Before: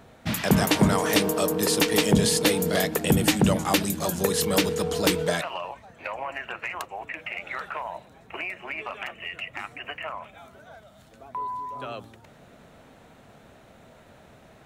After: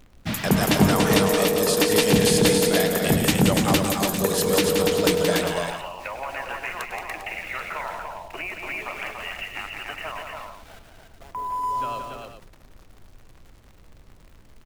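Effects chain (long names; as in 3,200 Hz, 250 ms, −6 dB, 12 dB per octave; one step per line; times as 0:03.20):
centre clipping without the shift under −43 dBFS
background noise brown −50 dBFS
multi-tap delay 100/175/288/400 ms −13.5/−6/−4/−10.5 dB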